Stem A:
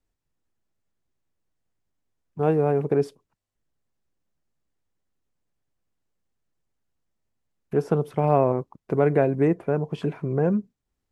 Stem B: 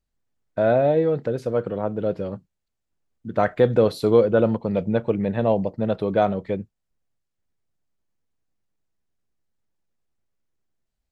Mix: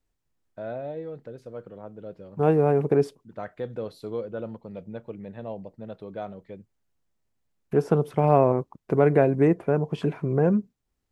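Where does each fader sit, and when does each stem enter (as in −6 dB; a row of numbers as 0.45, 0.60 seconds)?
+1.0, −15.5 decibels; 0.00, 0.00 seconds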